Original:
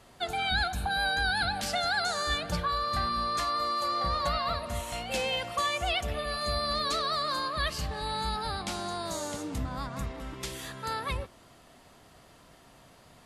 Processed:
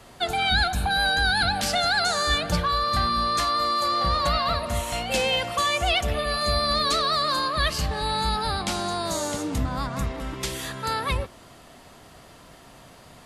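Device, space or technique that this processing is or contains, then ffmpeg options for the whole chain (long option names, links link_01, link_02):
one-band saturation: -filter_complex "[0:a]acrossover=split=430|2500[link_01][link_02][link_03];[link_02]asoftclip=type=tanh:threshold=-27.5dB[link_04];[link_01][link_04][link_03]amix=inputs=3:normalize=0,volume=7.5dB"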